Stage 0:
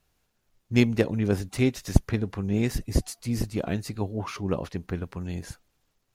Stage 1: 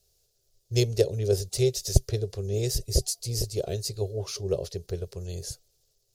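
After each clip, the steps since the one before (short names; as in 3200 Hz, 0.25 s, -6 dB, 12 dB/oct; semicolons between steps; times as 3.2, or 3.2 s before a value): EQ curve 130 Hz 0 dB, 270 Hz -24 dB, 390 Hz +5 dB, 620 Hz +1 dB, 920 Hz -16 dB, 2200 Hz -12 dB, 4800 Hz +10 dB, 11000 Hz +7 dB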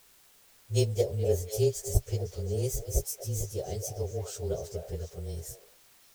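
inharmonic rescaling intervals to 108%; in parallel at -8 dB: requantised 8-bit, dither triangular; on the sum: delay with a stepping band-pass 0.243 s, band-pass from 680 Hz, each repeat 1.4 oct, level -5.5 dB; gain -4 dB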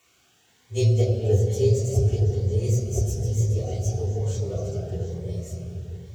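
reverb RT60 3.6 s, pre-delay 3 ms, DRR -3 dB; cascading phaser rising 1.1 Hz; gain -7 dB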